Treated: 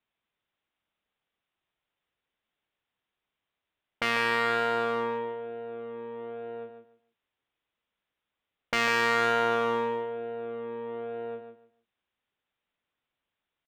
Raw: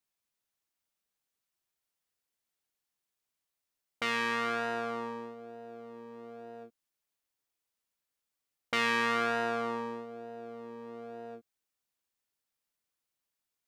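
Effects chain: resampled via 8 kHz; one-sided clip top -30 dBFS, bottom -18.5 dBFS; feedback delay 148 ms, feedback 21%, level -8.5 dB; trim +6.5 dB

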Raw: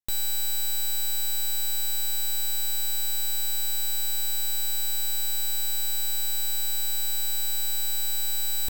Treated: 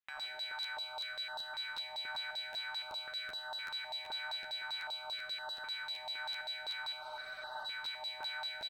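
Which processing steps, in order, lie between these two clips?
on a send: frequency-shifting echo 182 ms, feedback 63%, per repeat +42 Hz, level -21.5 dB; on the sum: compression, threshold -32 dBFS, peak gain reduction 7.5 dB; treble shelf 11 kHz -12 dB; sine folder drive 3 dB, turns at -24 dBFS; algorithmic reverb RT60 1.1 s, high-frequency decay 0.65×, pre-delay 50 ms, DRR -1 dB; LFO band-pass saw down 5.1 Hz 890–5100 Hz; three-band isolator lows -12 dB, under 430 Hz, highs -23 dB, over 2.1 kHz; hum notches 60/120/180/240/300/360/420 Hz; crackling interface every 0.38 s, samples 512, repeat, from 0.62 s; spectral freeze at 7.04 s, 0.61 s; step-sequenced notch 3.9 Hz 420–2300 Hz; trim +12.5 dB

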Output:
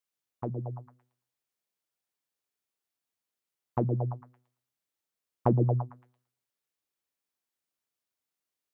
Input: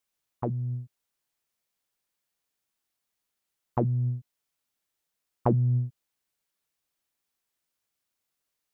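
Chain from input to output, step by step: high-pass 58 Hz; repeats whose band climbs or falls 113 ms, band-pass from 350 Hz, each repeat 0.7 oct, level -1 dB; upward expansion 1.5:1, over -33 dBFS

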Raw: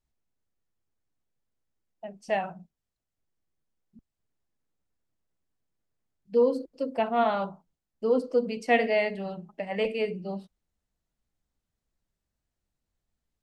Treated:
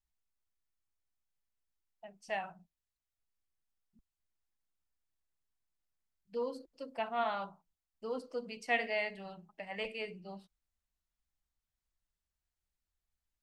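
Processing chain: graphic EQ 125/250/500 Hz -7/-8/-8 dB; trim -5 dB

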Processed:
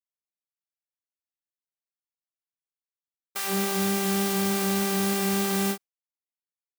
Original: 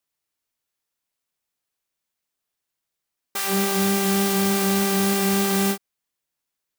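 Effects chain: gate with hold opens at -16 dBFS; trim -4.5 dB

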